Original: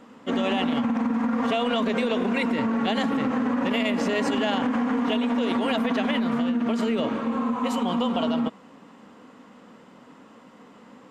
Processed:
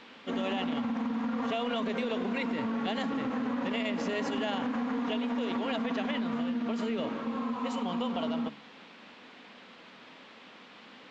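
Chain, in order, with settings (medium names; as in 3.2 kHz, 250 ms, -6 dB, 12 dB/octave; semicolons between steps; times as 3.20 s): resampled via 16 kHz; band noise 260–3500 Hz -46 dBFS; de-hum 71.34 Hz, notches 5; trim -7.5 dB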